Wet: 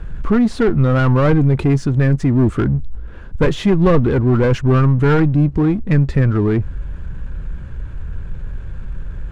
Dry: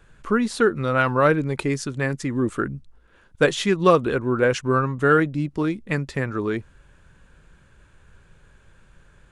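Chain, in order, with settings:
asymmetric clip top −20.5 dBFS
power curve on the samples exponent 0.7
RIAA equalisation playback
level −1.5 dB

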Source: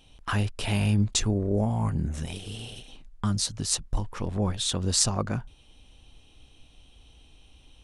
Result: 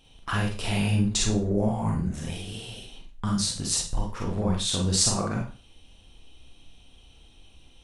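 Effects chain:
four-comb reverb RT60 0.36 s, combs from 33 ms, DRR −1 dB
level −2 dB

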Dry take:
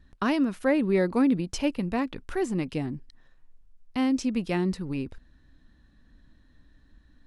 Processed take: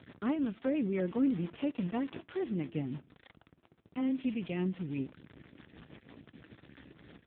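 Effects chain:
linear delta modulator 32 kbit/s, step −36 dBFS
hum removal 335.1 Hz, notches 4
0:04.16–0:04.62: dynamic equaliser 2,700 Hz, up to +7 dB, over −52 dBFS, Q 1.5
in parallel at −2.5 dB: brickwall limiter −22.5 dBFS, peak gain reduction 10.5 dB
on the sum: rotating-speaker cabinet horn 6 Hz
0:01.18–0:02.44: bit-depth reduction 6 bits, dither none
on a send at −20.5 dB: convolution reverb RT60 0.40 s, pre-delay 3 ms
on the sum: upward compression, threshold −37 dBFS
level −8 dB
AMR narrowband 5.9 kbit/s 8,000 Hz

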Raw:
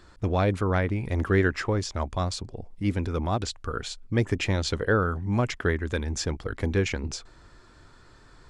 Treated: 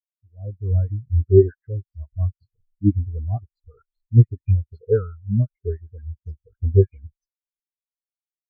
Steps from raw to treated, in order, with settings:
automatic gain control gain up to 12 dB
all-pass dispersion highs, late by 102 ms, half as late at 1,800 Hz
every bin expanded away from the loudest bin 4 to 1

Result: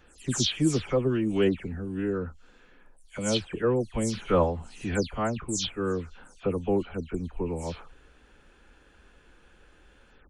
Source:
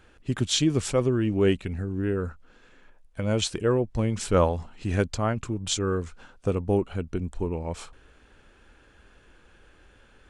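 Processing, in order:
every frequency bin delayed by itself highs early, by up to 186 ms
level −1 dB

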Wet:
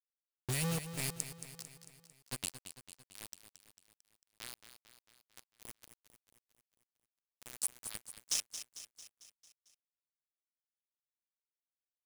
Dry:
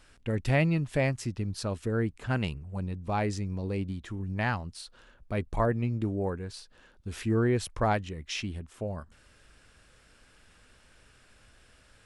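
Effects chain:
adaptive Wiener filter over 41 samples
high-pass filter 65 Hz 12 dB per octave
first-order pre-emphasis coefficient 0.97
low-pass that shuts in the quiet parts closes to 1,000 Hz, open at −45.5 dBFS
drawn EQ curve 170 Hz 0 dB, 470 Hz −25 dB, 2,100 Hz −21 dB, 8,800 Hz +5 dB
in parallel at +2.5 dB: output level in coarse steps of 19 dB
on the sum: bit-depth reduction 8 bits, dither none
on a send: repeating echo 224 ms, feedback 57%, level −11 dB
on the sum: level +12 dB

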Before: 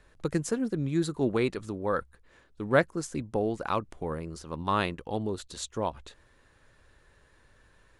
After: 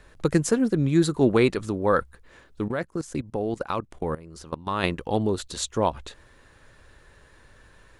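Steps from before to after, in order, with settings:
0:02.68–0:04.84: output level in coarse steps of 17 dB
level +7.5 dB

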